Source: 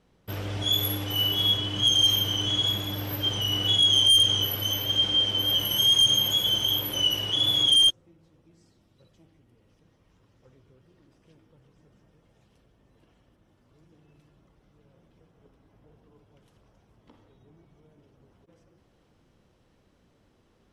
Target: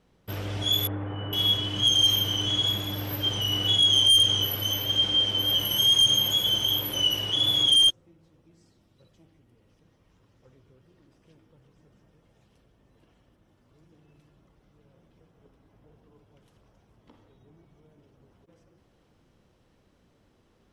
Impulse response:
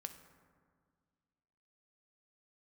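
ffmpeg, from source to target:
-filter_complex "[0:a]asettb=1/sr,asplit=3[a][b][c];[a]atrim=end=0.874[d];[b]atrim=start=0.87:end=1.33,asetpts=PTS-STARTPTS,afade=t=in:d=0.004:c=qsin,afade=t=out:st=0.456:d=0.004:c=qsin,lowpass=f=1.7k:w=0.5412,lowpass=f=1.7k:w=1.3066[e];[c]atrim=start=1.326[f];[d][e]acrossfade=d=0.004:c1=hsin:c2=qsin[g];[g][f]acrossfade=d=0.004:c1=qsin:c2=hsin"

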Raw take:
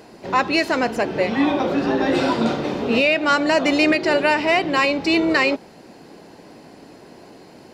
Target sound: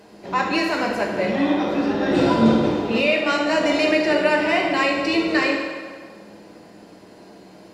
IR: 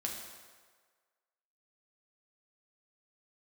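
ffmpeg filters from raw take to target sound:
-filter_complex "[0:a]asettb=1/sr,asplit=3[a][b][c];[a]atrim=end=2.114[d];[b]atrim=start=2.11:end=2.69,asetpts=PTS-STARTPTS,afade=t=in:d=0.004:c=qsin,afade=t=out:st=0.576:d=0.004:c=qsin,lowshelf=f=360:g=11[e];[c]atrim=start=2.686[f];[d][e]acrossfade=d=0.004:c1=hsin:c2=qsin[g];[g][f]acrossfade=d=0.004:c1=qsin:c2=hsin[h];[1:a]atrim=start_sample=2205,asetrate=40572,aresample=44100[i];[h][i]afir=irnorm=-1:irlink=0,volume=-3.5dB"

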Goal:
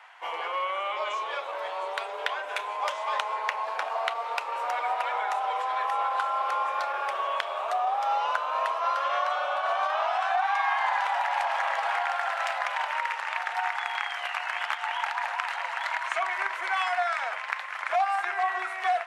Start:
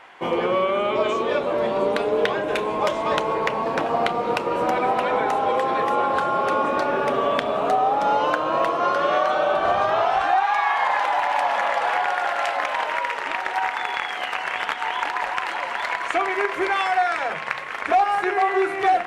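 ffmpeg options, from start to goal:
-af "asetrate=42845,aresample=44100,atempo=1.0293,highpass=f=740:w=0.5412,highpass=f=740:w=1.3066,volume=-4dB"

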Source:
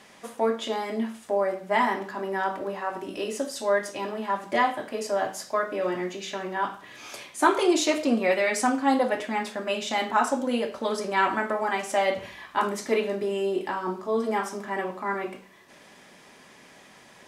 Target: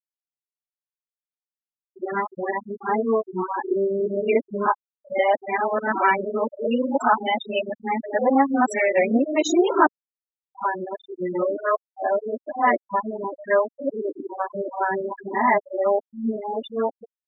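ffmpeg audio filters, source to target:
-af "areverse,afftfilt=real='re*gte(hypot(re,im),0.1)':imag='im*gte(hypot(re,im),0.1)':win_size=1024:overlap=0.75,dynaudnorm=f=110:g=17:m=4.5dB"

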